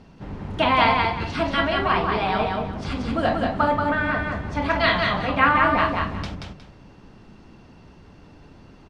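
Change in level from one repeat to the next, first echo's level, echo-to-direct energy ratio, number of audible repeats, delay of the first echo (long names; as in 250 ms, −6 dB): −11.5 dB, −3.5 dB, −3.0 dB, 2, 181 ms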